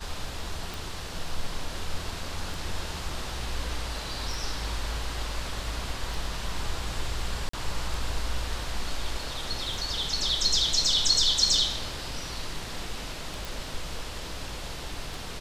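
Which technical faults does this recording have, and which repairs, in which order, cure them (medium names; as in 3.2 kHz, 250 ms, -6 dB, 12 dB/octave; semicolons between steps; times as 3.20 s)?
tick 33 1/3 rpm
7.49–7.53 s: dropout 44 ms
13.45 s: pop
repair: de-click; interpolate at 7.49 s, 44 ms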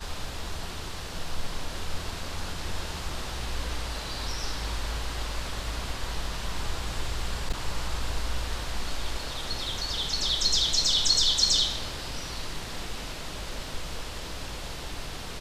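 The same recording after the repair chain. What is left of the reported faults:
nothing left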